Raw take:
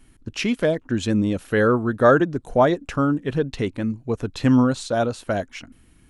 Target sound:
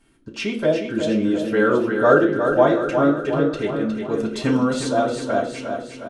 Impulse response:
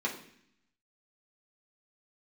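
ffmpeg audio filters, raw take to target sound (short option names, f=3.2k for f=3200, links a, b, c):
-filter_complex "[0:a]asettb=1/sr,asplit=3[a][b][c];[a]atrim=end=4.004[d];[b]atrim=start=4:end=4.92,asetpts=PTS-STARTPTS,afade=t=in:d=0.004:c=qsin,afade=t=out:st=0.916:d=0.004:c=qsin,highshelf=f=3.8k:g=9[e];[c]atrim=start=4.916[f];[d][e]acrossfade=d=0.004:c1=hsin:c2=qsin[g];[g][f]acrossfade=d=0.004:c1=qsin:c2=hsin,aecho=1:1:360|720|1080|1440|1800|2160|2520:0.447|0.255|0.145|0.0827|0.0472|0.0269|0.0153[h];[1:a]atrim=start_sample=2205,asetrate=61740,aresample=44100[i];[h][i]afir=irnorm=-1:irlink=0,volume=-3.5dB"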